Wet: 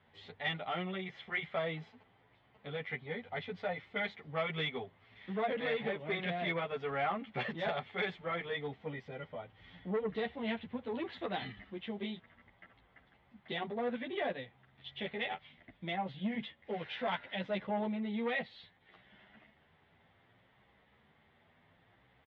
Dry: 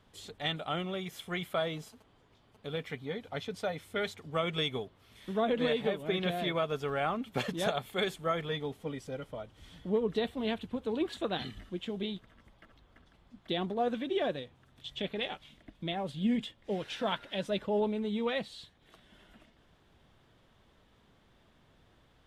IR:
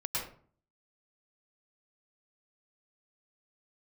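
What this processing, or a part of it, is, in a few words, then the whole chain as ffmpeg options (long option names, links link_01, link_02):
barber-pole flanger into a guitar amplifier: -filter_complex "[0:a]asplit=2[link_01][link_02];[link_02]adelay=10.2,afreqshift=0.66[link_03];[link_01][link_03]amix=inputs=2:normalize=1,asoftclip=type=tanh:threshold=-28dB,highpass=78,equalizer=frequency=310:width_type=q:width=4:gain=-5,equalizer=frequency=800:width_type=q:width=4:gain=5,equalizer=frequency=2000:width_type=q:width=4:gain=10,lowpass=frequency=3600:width=0.5412,lowpass=frequency=3600:width=1.3066"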